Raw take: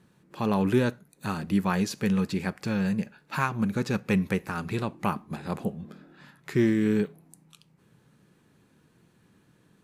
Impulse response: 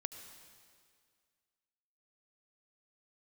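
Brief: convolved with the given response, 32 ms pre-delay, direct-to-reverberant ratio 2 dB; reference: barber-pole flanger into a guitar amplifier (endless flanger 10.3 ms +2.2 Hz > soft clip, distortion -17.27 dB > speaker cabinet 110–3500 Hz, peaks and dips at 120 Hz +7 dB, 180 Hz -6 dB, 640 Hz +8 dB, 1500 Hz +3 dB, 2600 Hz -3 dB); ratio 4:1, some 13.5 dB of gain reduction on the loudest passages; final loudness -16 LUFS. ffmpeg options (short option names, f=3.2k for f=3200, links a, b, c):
-filter_complex "[0:a]acompressor=threshold=-35dB:ratio=4,asplit=2[a][b];[1:a]atrim=start_sample=2205,adelay=32[c];[b][c]afir=irnorm=-1:irlink=0,volume=0dB[d];[a][d]amix=inputs=2:normalize=0,asplit=2[e][f];[f]adelay=10.3,afreqshift=2.2[g];[e][g]amix=inputs=2:normalize=1,asoftclip=threshold=-30.5dB,highpass=110,equalizer=f=120:t=q:w=4:g=7,equalizer=f=180:t=q:w=4:g=-6,equalizer=f=640:t=q:w=4:g=8,equalizer=f=1.5k:t=q:w=4:g=3,equalizer=f=2.6k:t=q:w=4:g=-3,lowpass=f=3.5k:w=0.5412,lowpass=f=3.5k:w=1.3066,volume=25dB"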